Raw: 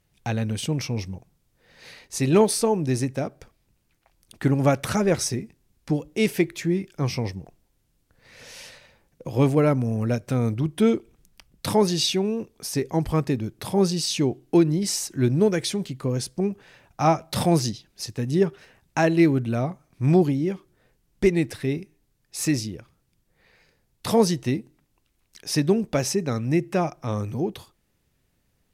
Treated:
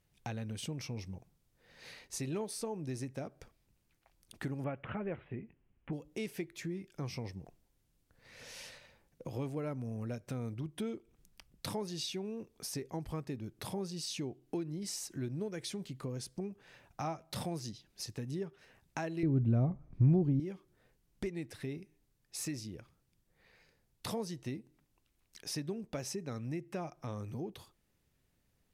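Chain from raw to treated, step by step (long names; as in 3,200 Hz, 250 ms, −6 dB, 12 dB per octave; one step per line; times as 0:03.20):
downward compressor 3 to 1, threshold −33 dBFS, peak gain reduction 15 dB
0:04.64–0:05.93: Butterworth low-pass 3,100 Hz 72 dB per octave
0:19.23–0:20.40: spectral tilt −4.5 dB per octave
level −6.5 dB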